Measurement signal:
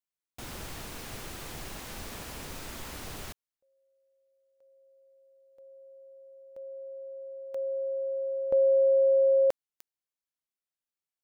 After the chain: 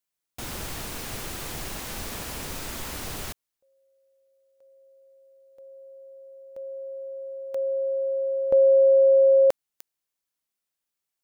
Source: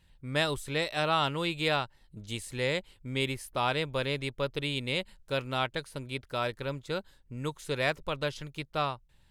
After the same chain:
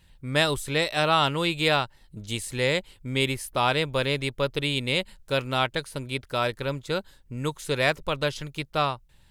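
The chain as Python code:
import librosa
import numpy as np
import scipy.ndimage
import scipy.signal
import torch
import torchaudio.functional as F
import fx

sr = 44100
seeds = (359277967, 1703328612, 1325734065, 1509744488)

y = fx.high_shelf(x, sr, hz=6000.0, db=3.5)
y = F.gain(torch.from_numpy(y), 5.5).numpy()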